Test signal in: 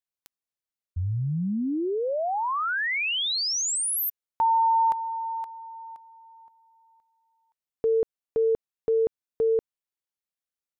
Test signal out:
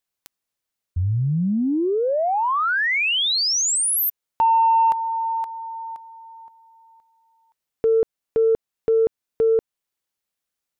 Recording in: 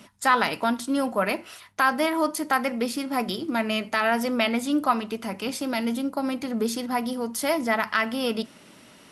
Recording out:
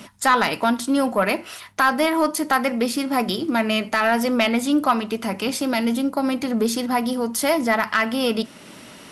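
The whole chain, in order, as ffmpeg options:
ffmpeg -i in.wav -filter_complex "[0:a]asplit=2[link_01][link_02];[link_02]acompressor=threshold=-33dB:ratio=6:attack=1.4:release=609:detection=peak,volume=-3dB[link_03];[link_01][link_03]amix=inputs=2:normalize=0,asoftclip=type=tanh:threshold=-11dB,volume=4dB" out.wav

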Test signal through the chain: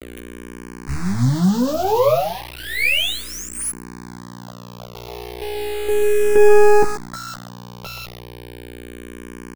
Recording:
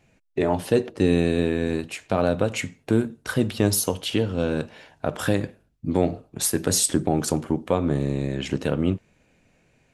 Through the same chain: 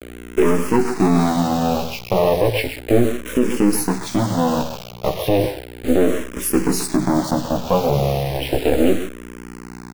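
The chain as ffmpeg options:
ffmpeg -i in.wav -filter_complex "[0:a]firequalizer=gain_entry='entry(600,0);entry(1100,-28);entry(2300,-4);entry(7700,-27);entry(11000,-10)':delay=0.05:min_phase=1,asplit=2[link_01][link_02];[link_02]adelay=130,highpass=300,lowpass=3400,asoftclip=type=hard:threshold=-17.5dB,volume=-10dB[link_03];[link_01][link_03]amix=inputs=2:normalize=0,aeval=exprs='val(0)+0.00398*(sin(2*PI*60*n/s)+sin(2*PI*2*60*n/s)/2+sin(2*PI*3*60*n/s)/3+sin(2*PI*4*60*n/s)/4+sin(2*PI*5*60*n/s)/5)':channel_layout=same,acrossover=split=3600[link_04][link_05];[link_04]aeval=exprs='max(val(0),0)':channel_layout=same[link_06];[link_06][link_05]amix=inputs=2:normalize=0,asplit=2[link_07][link_08];[link_08]adelay=16,volume=-3.5dB[link_09];[link_07][link_09]amix=inputs=2:normalize=0,bandreject=frequency=54.17:width_type=h:width=4,bandreject=frequency=108.34:width_type=h:width=4,bandreject=frequency=162.51:width_type=h:width=4,acrusher=bits=6:mix=0:aa=0.000001,lowshelf=frequency=100:gain=-6.5,alimiter=level_in=15dB:limit=-1dB:release=50:level=0:latency=1,asplit=2[link_10][link_11];[link_11]afreqshift=-0.34[link_12];[link_10][link_12]amix=inputs=2:normalize=1" out.wav

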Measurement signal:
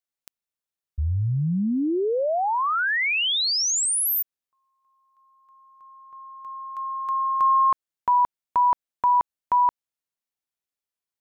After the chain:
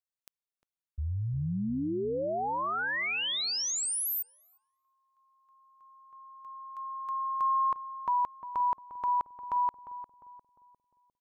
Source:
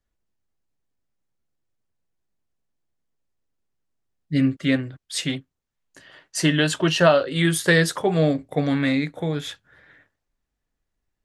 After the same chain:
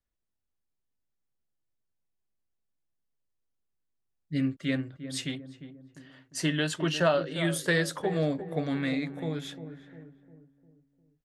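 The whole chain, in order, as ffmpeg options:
ffmpeg -i in.wav -filter_complex "[0:a]asplit=2[link_01][link_02];[link_02]adelay=352,lowpass=frequency=840:poles=1,volume=-10dB,asplit=2[link_03][link_04];[link_04]adelay=352,lowpass=frequency=840:poles=1,volume=0.51,asplit=2[link_05][link_06];[link_06]adelay=352,lowpass=frequency=840:poles=1,volume=0.51,asplit=2[link_07][link_08];[link_08]adelay=352,lowpass=frequency=840:poles=1,volume=0.51,asplit=2[link_09][link_10];[link_10]adelay=352,lowpass=frequency=840:poles=1,volume=0.51,asplit=2[link_11][link_12];[link_12]adelay=352,lowpass=frequency=840:poles=1,volume=0.51[link_13];[link_01][link_03][link_05][link_07][link_09][link_11][link_13]amix=inputs=7:normalize=0,volume=-8.5dB" out.wav

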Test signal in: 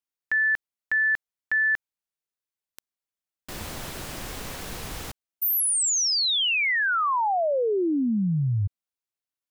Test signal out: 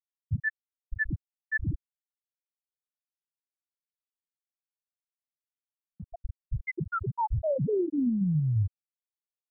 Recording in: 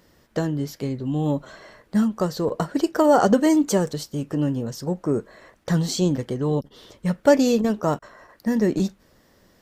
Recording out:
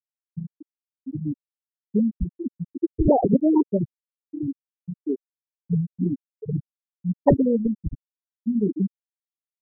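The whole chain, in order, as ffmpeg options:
ffmpeg -i in.wav -af "aresample=16000,aresample=44100,acrusher=samples=40:mix=1:aa=0.000001:lfo=1:lforange=64:lforate=3.7,afftfilt=real='re*gte(hypot(re,im),0.631)':imag='im*gte(hypot(re,im),0.631)':win_size=1024:overlap=0.75" out.wav

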